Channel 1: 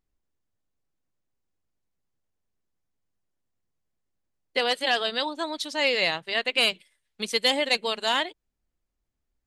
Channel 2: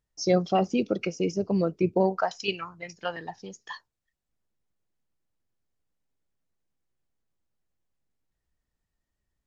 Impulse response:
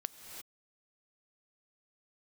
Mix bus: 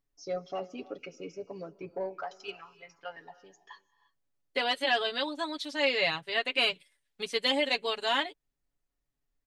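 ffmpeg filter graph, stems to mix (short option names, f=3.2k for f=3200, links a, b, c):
-filter_complex "[0:a]volume=-5dB[a];[1:a]bass=f=250:g=-12,treble=f=4k:g=-6,asoftclip=type=tanh:threshold=-13.5dB,volume=-14dB,asplit=2[b][c];[c]volume=-8.5dB[d];[2:a]atrim=start_sample=2205[e];[d][e]afir=irnorm=-1:irlink=0[f];[a][b][f]amix=inputs=3:normalize=0,acrossover=split=4400[g][h];[h]acompressor=threshold=-48dB:ratio=4:attack=1:release=60[i];[g][i]amix=inputs=2:normalize=0,aecho=1:1:7.1:0.73"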